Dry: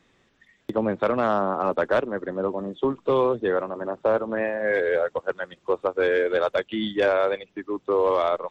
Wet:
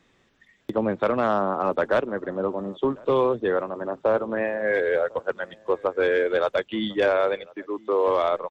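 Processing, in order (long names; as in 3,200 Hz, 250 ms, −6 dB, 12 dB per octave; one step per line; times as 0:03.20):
0:07.47–0:08.08: high-pass filter 270 Hz 12 dB per octave
slap from a distant wall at 180 metres, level −24 dB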